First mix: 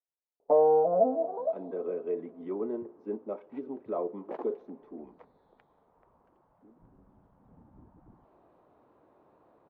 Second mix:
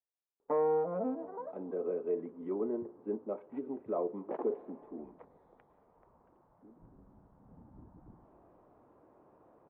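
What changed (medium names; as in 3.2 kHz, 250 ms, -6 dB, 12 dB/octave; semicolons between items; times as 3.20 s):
first sound: remove resonant low-pass 670 Hz, resonance Q 5.8; second sound: send +9.0 dB; master: add distance through air 490 m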